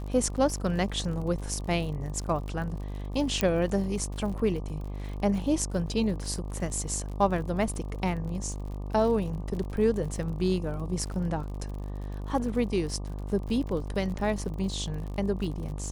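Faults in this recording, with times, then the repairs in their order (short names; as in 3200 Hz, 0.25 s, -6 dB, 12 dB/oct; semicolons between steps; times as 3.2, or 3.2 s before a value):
buzz 50 Hz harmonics 24 -35 dBFS
crackle 56/s -37 dBFS
3.41 pop -10 dBFS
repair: de-click; de-hum 50 Hz, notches 24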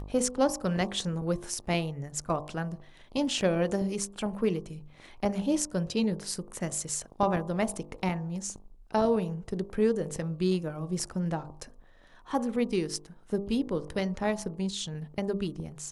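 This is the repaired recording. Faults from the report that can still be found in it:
3.41 pop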